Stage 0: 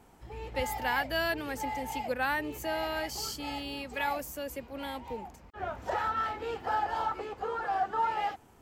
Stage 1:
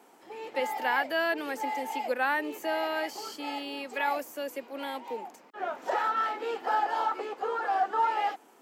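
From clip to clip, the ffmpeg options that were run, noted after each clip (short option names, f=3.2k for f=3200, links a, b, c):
-filter_complex "[0:a]acrossover=split=2900[a][b];[b]acompressor=threshold=-47dB:ratio=4:attack=1:release=60[c];[a][c]amix=inputs=2:normalize=0,highpass=f=270:w=0.5412,highpass=f=270:w=1.3066,volume=3dB"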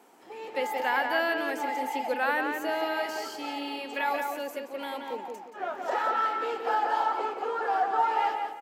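-filter_complex "[0:a]asplit=2[a][b];[b]adelay=176,lowpass=f=3.3k:p=1,volume=-4dB,asplit=2[c][d];[d]adelay=176,lowpass=f=3.3k:p=1,volume=0.33,asplit=2[e][f];[f]adelay=176,lowpass=f=3.3k:p=1,volume=0.33,asplit=2[g][h];[h]adelay=176,lowpass=f=3.3k:p=1,volume=0.33[i];[a][c][e][g][i]amix=inputs=5:normalize=0"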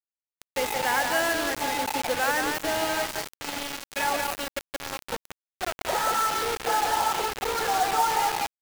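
-af "acrusher=bits=4:mix=0:aa=0.000001,volume=1.5dB"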